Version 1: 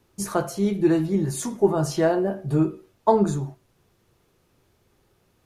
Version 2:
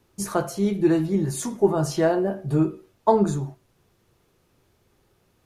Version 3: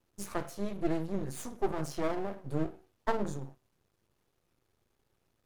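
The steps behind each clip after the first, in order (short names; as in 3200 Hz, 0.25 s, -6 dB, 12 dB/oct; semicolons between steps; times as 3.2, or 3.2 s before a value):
nothing audible
wow and flutter 29 cents; half-wave rectifier; gain -8 dB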